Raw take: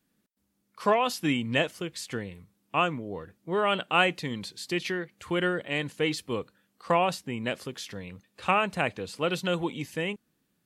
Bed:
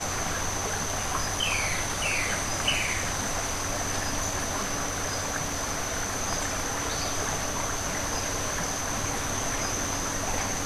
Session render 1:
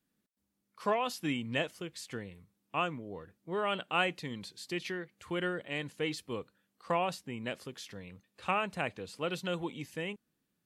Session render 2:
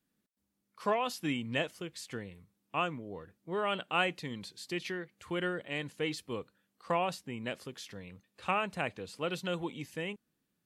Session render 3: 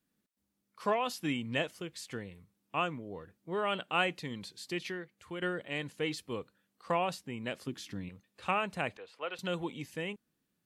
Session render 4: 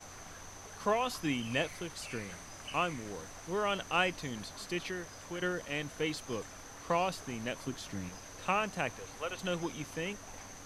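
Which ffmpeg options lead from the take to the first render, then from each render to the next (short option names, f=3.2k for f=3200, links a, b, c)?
-af "volume=-7dB"
-af anull
-filter_complex "[0:a]asettb=1/sr,asplit=3[a][b][c];[a]atrim=end=7.674[d];[b]atrim=start=7.67:end=8.09,asetpts=PTS-STARTPTS,afade=t=in:d=0.004:c=qsin,afade=t=out:st=0.416:d=0.004:c=qsin,lowshelf=f=390:t=q:w=3:g=6[e];[c]atrim=start=8.086[f];[d][e]acrossfade=d=0.004:c1=hsin:c2=qsin[g];[g][f]acrossfade=d=0.004:c1=qsin:c2=hsin,asettb=1/sr,asplit=3[h][i][j];[h]atrim=end=8.974[k];[i]atrim=start=8.97:end=9.39,asetpts=PTS-STARTPTS,afade=t=in:d=0.004:c=qsin,afade=t=out:st=0.416:d=0.004:c=qsin,acrossover=split=460 3300:gain=0.0631 1 0.126[l][m][n];[l][m][n]amix=inputs=3:normalize=0[o];[j]atrim=start=9.386[p];[k][o]acrossfade=d=0.004:c1=hsin:c2=qsin[q];[q][p]acrossfade=d=0.004:c1=qsin:c2=hsin,asplit=2[r][s];[r]atrim=end=5.42,asetpts=PTS-STARTPTS,afade=t=out:st=4.75:d=0.67:silence=0.446684[t];[s]atrim=start=5.42,asetpts=PTS-STARTPTS,afade=t=in:d=0.004:c=hsin:silence=0.446684[u];[t][u]concat=n=2:v=0:a=1"
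-filter_complex "[1:a]volume=-19.5dB[a];[0:a][a]amix=inputs=2:normalize=0"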